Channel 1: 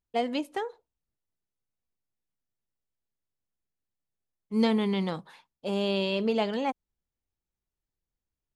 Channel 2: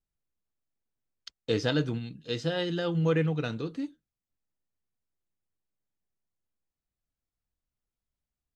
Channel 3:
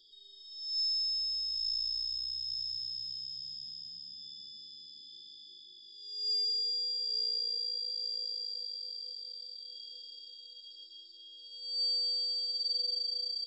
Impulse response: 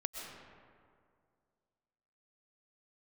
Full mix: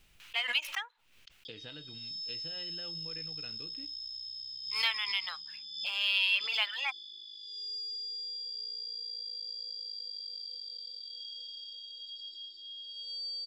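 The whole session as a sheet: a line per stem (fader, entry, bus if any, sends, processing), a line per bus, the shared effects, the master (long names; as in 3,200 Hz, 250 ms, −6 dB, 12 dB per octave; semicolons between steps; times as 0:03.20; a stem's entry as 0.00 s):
−2.5 dB, 0.20 s, no send, running median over 5 samples; reverb reduction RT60 1.4 s; high-pass filter 1,100 Hz 24 dB per octave
−17.5 dB, 0.00 s, no send, downward compressor 6 to 1, threshold −30 dBFS, peak gain reduction 9.5 dB
−3.0 dB, 1.45 s, no send, parametric band 140 Hz −9.5 dB 0.43 octaves; downward compressor 4 to 1, threshold −41 dBFS, peak gain reduction 9.5 dB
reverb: not used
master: parametric band 2,700 Hz +13.5 dB 1.1 octaves; background raised ahead of every attack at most 71 dB per second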